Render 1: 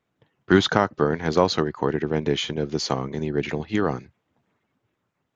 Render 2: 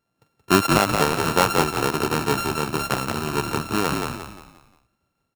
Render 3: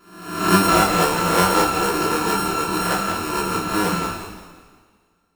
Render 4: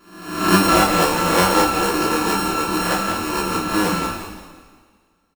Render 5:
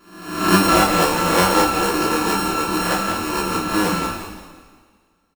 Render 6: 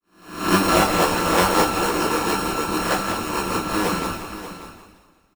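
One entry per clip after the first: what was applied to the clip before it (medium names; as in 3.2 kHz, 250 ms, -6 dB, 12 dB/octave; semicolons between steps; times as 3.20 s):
sorted samples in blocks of 32 samples; peaking EQ 710 Hz +3 dB 0.78 oct; on a send: frequency-shifting echo 176 ms, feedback 39%, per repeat -36 Hz, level -4 dB; on the sum: trim -1 dB
reverse spectral sustain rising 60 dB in 0.81 s; peaking EQ 130 Hz -12 dB 0.22 oct; two-slope reverb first 0.27 s, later 2 s, from -21 dB, DRR -6 dB; trim -7 dB
band-stop 1.4 kHz, Q 17; comb 3.6 ms, depth 32%; trim +1.5 dB
no audible change
fade-in on the opening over 0.57 s; delay 585 ms -13 dB; harmonic-percussive split percussive +9 dB; trim -6.5 dB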